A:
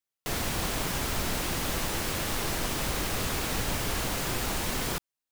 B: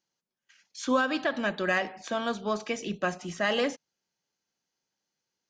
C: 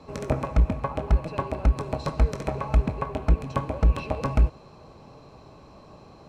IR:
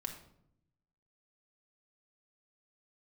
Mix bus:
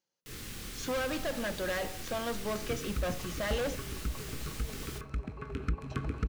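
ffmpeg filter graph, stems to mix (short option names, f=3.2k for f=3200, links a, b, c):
-filter_complex "[0:a]dynaudnorm=f=160:g=3:m=7dB,flanger=delay=22.5:depth=6.4:speed=0.48,volume=-17dB,asplit=2[a][b];[b]volume=-9dB[c];[1:a]equalizer=f=520:t=o:w=0.3:g=8.5,volume=26.5dB,asoftclip=hard,volume=-26.5dB,volume=-4dB[d];[2:a]equalizer=f=1k:w=1:g=5.5,adelay=2400,volume=-4dB,afade=t=in:st=5.37:d=0.25:silence=0.375837,asplit=2[e][f];[f]volume=-15.5dB[g];[a][e]amix=inputs=2:normalize=0,asuperstop=centerf=750:order=12:qfactor=0.98,acompressor=threshold=-30dB:ratio=3,volume=0dB[h];[3:a]atrim=start_sample=2205[i];[c][i]afir=irnorm=-1:irlink=0[j];[g]aecho=0:1:361|722|1083|1444|1805|2166|2527:1|0.51|0.26|0.133|0.0677|0.0345|0.0176[k];[d][h][j][k]amix=inputs=4:normalize=0"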